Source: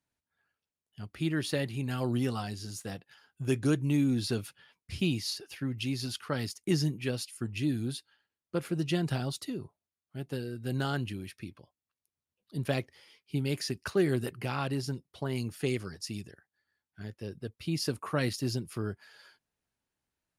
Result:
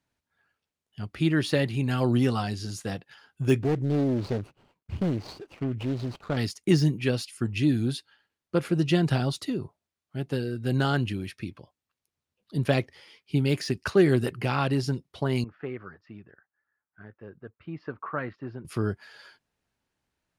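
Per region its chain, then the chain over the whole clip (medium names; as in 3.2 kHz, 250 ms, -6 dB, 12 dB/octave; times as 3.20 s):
3.62–6.37 s: median filter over 25 samples + compression 1.5:1, threshold -34 dBFS + loudspeaker Doppler distortion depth 0.68 ms
15.44–18.65 s: four-pole ladder low-pass 1.7 kHz, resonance 40% + tilt EQ +2 dB/octave
whole clip: treble shelf 9 kHz -12 dB; de-esser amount 95%; trim +7 dB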